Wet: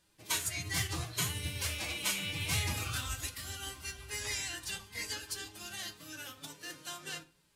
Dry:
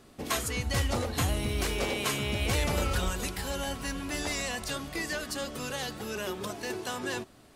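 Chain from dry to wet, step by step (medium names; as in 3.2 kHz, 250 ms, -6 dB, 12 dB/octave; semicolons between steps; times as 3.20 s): amplifier tone stack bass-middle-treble 5-5-5; hum notches 50/100/150/200 Hz; formant-preserving pitch shift +6 st; on a send at -6 dB: reverberation RT60 0.45 s, pre-delay 6 ms; on the sum: upward expansion 1.5:1, over -56 dBFS; trim +7 dB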